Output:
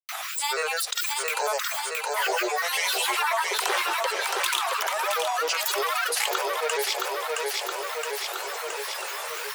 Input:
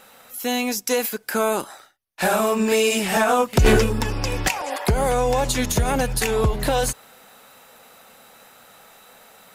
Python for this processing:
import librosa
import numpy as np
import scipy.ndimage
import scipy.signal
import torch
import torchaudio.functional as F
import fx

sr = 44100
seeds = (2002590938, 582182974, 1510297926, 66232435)

y = scipy.signal.sosfilt(scipy.signal.butter(16, 670.0, 'highpass', fs=sr, output='sos'), x)
y = fx.granulator(y, sr, seeds[0], grain_ms=100.0, per_s=20.0, spray_ms=100.0, spread_st=12)
y = fx.echo_feedback(y, sr, ms=669, feedback_pct=44, wet_db=-8.0)
y = fx.env_flatten(y, sr, amount_pct=70)
y = y * 10.0 ** (-4.5 / 20.0)